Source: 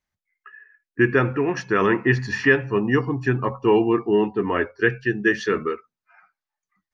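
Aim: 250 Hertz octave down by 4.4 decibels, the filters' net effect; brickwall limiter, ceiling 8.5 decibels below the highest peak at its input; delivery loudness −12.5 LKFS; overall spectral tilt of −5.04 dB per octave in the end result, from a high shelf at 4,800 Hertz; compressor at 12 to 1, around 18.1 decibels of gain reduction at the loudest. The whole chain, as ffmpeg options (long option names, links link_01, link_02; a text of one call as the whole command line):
ffmpeg -i in.wav -af "equalizer=frequency=250:width_type=o:gain=-6.5,highshelf=frequency=4800:gain=-3.5,acompressor=threshold=-33dB:ratio=12,volume=27.5dB,alimiter=limit=-1dB:level=0:latency=1" out.wav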